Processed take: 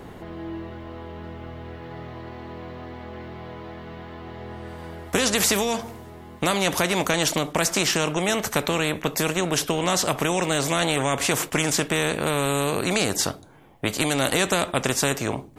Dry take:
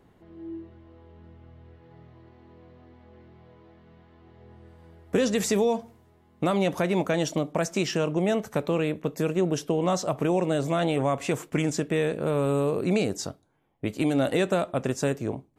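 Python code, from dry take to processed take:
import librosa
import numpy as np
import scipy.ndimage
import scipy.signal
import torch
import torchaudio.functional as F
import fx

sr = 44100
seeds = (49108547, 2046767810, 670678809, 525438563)

y = fx.spectral_comp(x, sr, ratio=2.0)
y = y * 10.0 ** (6.5 / 20.0)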